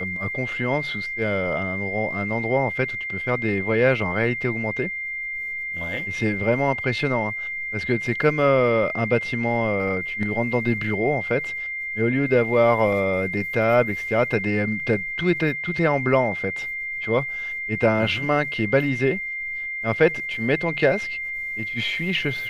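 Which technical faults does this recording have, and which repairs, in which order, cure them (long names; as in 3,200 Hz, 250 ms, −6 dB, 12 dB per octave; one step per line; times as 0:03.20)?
whistle 2,100 Hz −27 dBFS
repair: notch filter 2,100 Hz, Q 30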